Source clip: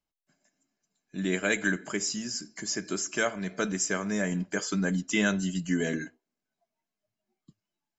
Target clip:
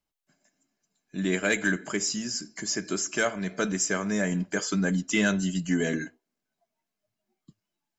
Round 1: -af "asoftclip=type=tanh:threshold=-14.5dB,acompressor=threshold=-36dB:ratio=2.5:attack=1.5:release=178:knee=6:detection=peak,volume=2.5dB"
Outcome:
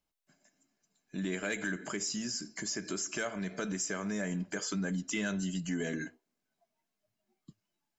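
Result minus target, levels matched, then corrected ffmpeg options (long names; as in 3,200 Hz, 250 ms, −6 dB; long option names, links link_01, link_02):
downward compressor: peak gain reduction +11 dB
-af "asoftclip=type=tanh:threshold=-14.5dB,volume=2.5dB"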